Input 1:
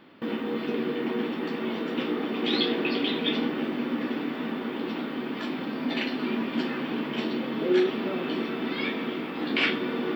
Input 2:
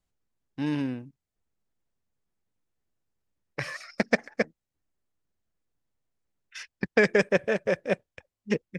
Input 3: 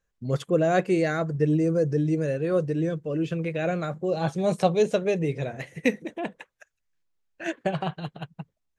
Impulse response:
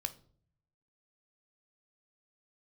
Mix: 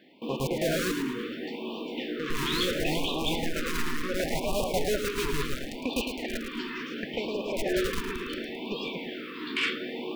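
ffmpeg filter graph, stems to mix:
-filter_complex "[0:a]highpass=180,highshelf=f=2400:g=4,volume=0.668[s0];[1:a]adelay=200,volume=1.12,asplit=2[s1][s2];[s2]volume=0.2[s3];[2:a]acrusher=bits=3:mix=0:aa=0.000001,volume=0.841,asplit=3[s4][s5][s6];[s4]atrim=end=0.84,asetpts=PTS-STARTPTS,afade=t=out:st=0.836:d=0.004:c=hsin[s7];[s5]atrim=start=0.84:end=2.19,asetpts=PTS-STARTPTS,volume=0[s8];[s6]atrim=start=2.19,asetpts=PTS-STARTPTS,afade=t=in:d=0.004:c=hsin[s9];[s7][s8][s9]concat=n=3:v=0:a=1,asplit=2[s10][s11];[s11]volume=0.668[s12];[s1][s10]amix=inputs=2:normalize=0,highpass=200,lowpass=2700,acompressor=threshold=0.0447:ratio=16,volume=1[s13];[s3][s12]amix=inputs=2:normalize=0,aecho=0:1:108|216|324|432|540:1|0.37|0.137|0.0507|0.0187[s14];[s0][s13][s14]amix=inputs=3:normalize=0,asubboost=boost=8:cutoff=65,asoftclip=type=tanh:threshold=0.112,afftfilt=real='re*(1-between(b*sr/1024,630*pow(1700/630,0.5+0.5*sin(2*PI*0.71*pts/sr))/1.41,630*pow(1700/630,0.5+0.5*sin(2*PI*0.71*pts/sr))*1.41))':imag='im*(1-between(b*sr/1024,630*pow(1700/630,0.5+0.5*sin(2*PI*0.71*pts/sr))/1.41,630*pow(1700/630,0.5+0.5*sin(2*PI*0.71*pts/sr))*1.41))':win_size=1024:overlap=0.75"

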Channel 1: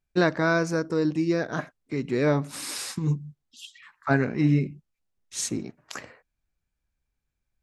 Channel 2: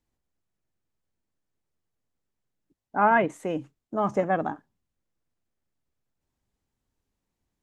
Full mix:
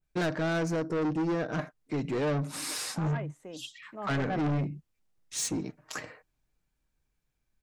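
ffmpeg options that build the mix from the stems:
-filter_complex "[0:a]aecho=1:1:6.5:0.34,adynamicequalizer=threshold=0.01:dfrequency=1600:dqfactor=0.7:tfrequency=1600:tqfactor=0.7:attack=5:release=100:ratio=0.375:range=3:mode=cutabove:tftype=highshelf,volume=1.12[s0];[1:a]dynaudnorm=f=520:g=7:m=2.37,volume=0.398,afade=t=in:st=3.98:d=0.65:silence=0.237137[s1];[s0][s1]amix=inputs=2:normalize=0,asoftclip=type=tanh:threshold=0.0501"

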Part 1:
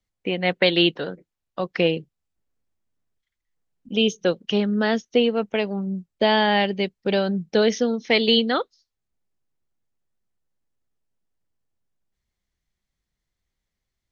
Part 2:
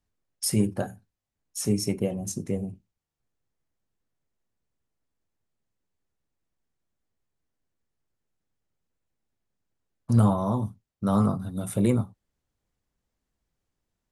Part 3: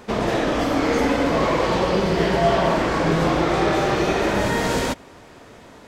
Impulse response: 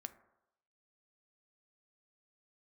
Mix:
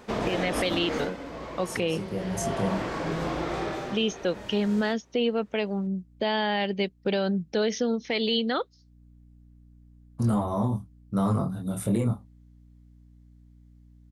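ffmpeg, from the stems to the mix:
-filter_complex "[0:a]volume=0.794,asplit=2[s0][s1];[1:a]acontrast=86,flanger=delay=19.5:depth=7.2:speed=0.22,aeval=exprs='val(0)+0.00398*(sin(2*PI*60*n/s)+sin(2*PI*2*60*n/s)/2+sin(2*PI*3*60*n/s)/3+sin(2*PI*4*60*n/s)/4+sin(2*PI*5*60*n/s)/5)':c=same,adelay=100,volume=0.631[s2];[2:a]volume=1.33,afade=t=out:st=0.86:d=0.25:silence=0.223872,afade=t=in:st=2.16:d=0.61:silence=0.375837,afade=t=out:st=3.57:d=0.53:silence=0.281838[s3];[s1]apad=whole_len=626998[s4];[s2][s4]sidechaincompress=threshold=0.0178:ratio=3:attack=16:release=390[s5];[s0][s5][s3]amix=inputs=3:normalize=0,alimiter=limit=0.15:level=0:latency=1:release=84"

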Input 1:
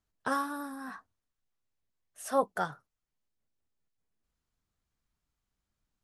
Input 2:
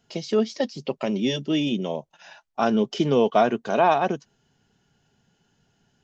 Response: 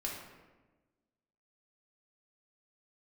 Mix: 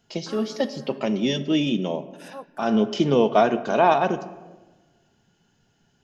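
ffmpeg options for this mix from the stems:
-filter_complex "[0:a]volume=0.251,asplit=2[s0][s1];[1:a]volume=0.891,asplit=2[s2][s3];[s3]volume=0.355[s4];[s1]apad=whole_len=266203[s5];[s2][s5]sidechaincompress=threshold=0.00562:ratio=8:attack=6.2:release=135[s6];[2:a]atrim=start_sample=2205[s7];[s4][s7]afir=irnorm=-1:irlink=0[s8];[s0][s6][s8]amix=inputs=3:normalize=0"

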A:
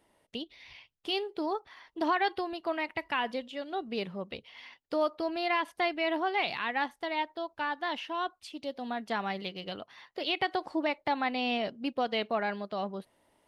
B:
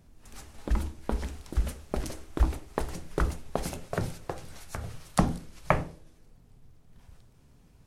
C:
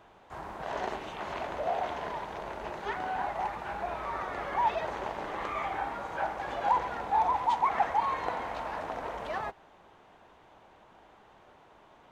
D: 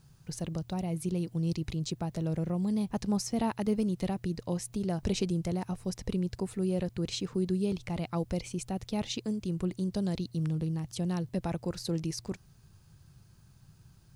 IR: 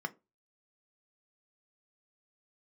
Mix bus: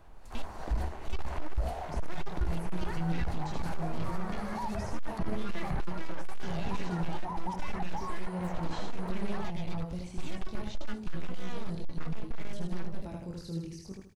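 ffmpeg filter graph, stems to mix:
-filter_complex "[0:a]highshelf=f=2200:g=-6.5,aeval=exprs='abs(val(0))':c=same,volume=1.19,asplit=2[s0][s1];[s1]volume=0.501[s2];[1:a]acrossover=split=280[s3][s4];[s4]acompressor=threshold=0.02:ratio=6[s5];[s3][s5]amix=inputs=2:normalize=0,equalizer=f=4400:w=7.8:g=8,volume=0.501[s6];[2:a]equalizer=f=3500:t=o:w=0.77:g=-4.5,alimiter=level_in=1.19:limit=0.0631:level=0:latency=1:release=221,volume=0.841,volume=0.596[s7];[3:a]flanger=delay=17.5:depth=7.2:speed=0.63,adelay=1600,volume=0.473,asplit=3[s8][s9][s10];[s9]volume=0.119[s11];[s10]volume=0.668[s12];[s0][s6][s7]amix=inputs=3:normalize=0,alimiter=level_in=1.33:limit=0.0631:level=0:latency=1:release=36,volume=0.75,volume=1[s13];[4:a]atrim=start_sample=2205[s14];[s2][s11]amix=inputs=2:normalize=0[s15];[s15][s14]afir=irnorm=-1:irlink=0[s16];[s12]aecho=0:1:78|156|234|312|390:1|0.34|0.116|0.0393|0.0134[s17];[s8][s13][s16][s17]amix=inputs=4:normalize=0,acrossover=split=4200[s18][s19];[s19]acompressor=threshold=0.00224:ratio=4:attack=1:release=60[s20];[s18][s20]amix=inputs=2:normalize=0,lowshelf=f=62:g=12,asoftclip=type=hard:threshold=0.0668"

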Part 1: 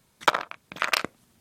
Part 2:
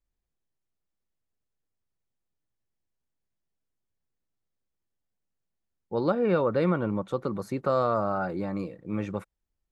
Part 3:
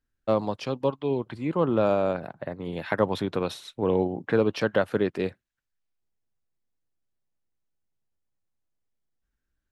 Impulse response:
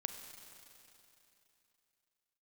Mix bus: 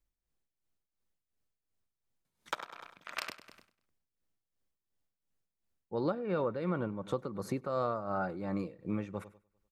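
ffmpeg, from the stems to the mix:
-filter_complex "[0:a]adelay=2250,volume=0.224,asplit=2[s0][s1];[s1]volume=0.631[s2];[1:a]volume=1.19,asplit=2[s3][s4];[s4]volume=0.075[s5];[s2][s5]amix=inputs=2:normalize=0,aecho=0:1:99|198|297|396|495|594:1|0.41|0.168|0.0689|0.0283|0.0116[s6];[s0][s3][s6]amix=inputs=3:normalize=0,tremolo=f=2.8:d=0.71,acompressor=threshold=0.0251:ratio=2.5"

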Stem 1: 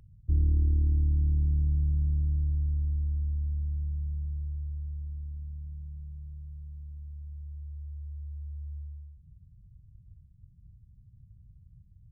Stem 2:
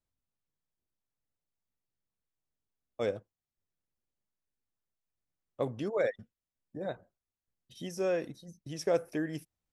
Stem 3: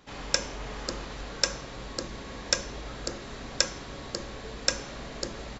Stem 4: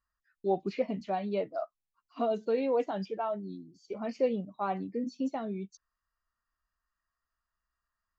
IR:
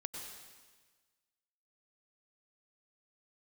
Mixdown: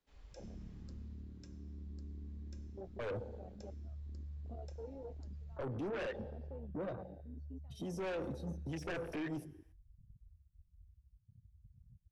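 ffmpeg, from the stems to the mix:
-filter_complex "[0:a]acompressor=threshold=0.0126:ratio=4,aeval=exprs='0.0141*(abs(mod(val(0)/0.0141+3,4)-2)-1)':c=same,adelay=150,volume=0.891[s0];[1:a]deesser=0.95,aeval=exprs='0.133*sin(PI/2*3.55*val(0)/0.133)':c=same,volume=1.06,asplit=3[s1][s2][s3];[s2]volume=0.168[s4];[2:a]volume=0.335,afade=t=out:st=0.58:d=0.65:silence=0.446684,asplit=2[s5][s6];[s6]volume=0.251[s7];[3:a]adelay=2300,volume=0.178[s8];[s3]apad=whole_len=540965[s9];[s0][s9]sidechaincompress=threshold=0.0398:ratio=8:attack=16:release=349[s10];[s1][s5][s8]amix=inputs=3:normalize=0,acrossover=split=190|850[s11][s12][s13];[s11]acompressor=threshold=0.0224:ratio=4[s14];[s12]acompressor=threshold=0.02:ratio=4[s15];[s13]acompressor=threshold=0.0316:ratio=4[s16];[s14][s15][s16]amix=inputs=3:normalize=0,alimiter=level_in=1.06:limit=0.0631:level=0:latency=1:release=39,volume=0.944,volume=1[s17];[4:a]atrim=start_sample=2205[s18];[s4][s7]amix=inputs=2:normalize=0[s19];[s19][s18]afir=irnorm=-1:irlink=0[s20];[s10][s17][s20]amix=inputs=3:normalize=0,flanger=delay=4.2:depth=3.9:regen=-69:speed=0.47:shape=triangular,afwtdn=0.00891,asoftclip=type=tanh:threshold=0.0178"

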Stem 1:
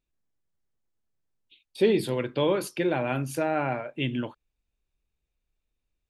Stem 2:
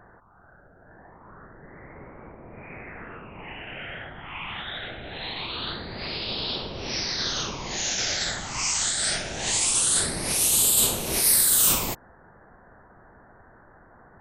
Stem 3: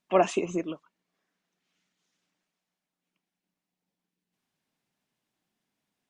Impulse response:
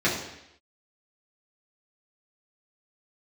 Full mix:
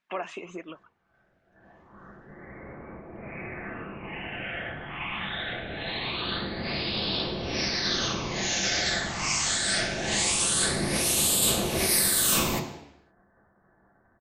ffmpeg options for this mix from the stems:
-filter_complex "[1:a]agate=range=0.0224:threshold=0.00794:ratio=3:detection=peak,adelay=650,volume=0.75,asplit=2[s0][s1];[s1]volume=0.224[s2];[2:a]acompressor=threshold=0.0251:ratio=3,equalizer=f=1700:w=0.58:g=14.5,flanger=delay=0.4:depth=6.4:regen=83:speed=1.4:shape=sinusoidal,volume=0.75[s3];[3:a]atrim=start_sample=2205[s4];[s2][s4]afir=irnorm=-1:irlink=0[s5];[s0][s3][s5]amix=inputs=3:normalize=0,highshelf=f=8500:g=-6.5"

